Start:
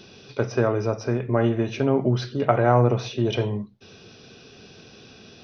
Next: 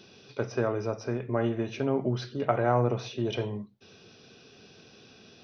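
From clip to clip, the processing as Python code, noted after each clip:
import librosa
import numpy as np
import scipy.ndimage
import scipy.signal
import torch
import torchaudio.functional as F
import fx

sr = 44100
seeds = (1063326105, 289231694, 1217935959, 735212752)

y = fx.low_shelf(x, sr, hz=67.0, db=-9.5)
y = y * 10.0 ** (-6.0 / 20.0)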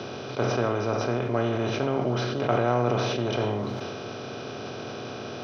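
y = fx.bin_compress(x, sr, power=0.4)
y = fx.sustainer(y, sr, db_per_s=20.0)
y = y * 10.0 ** (-3.0 / 20.0)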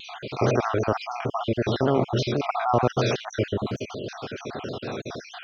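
y = fx.spec_dropout(x, sr, seeds[0], share_pct=58)
y = fx.vibrato_shape(y, sr, shape='saw_down', rate_hz=6.4, depth_cents=100.0)
y = y * 10.0 ** (5.0 / 20.0)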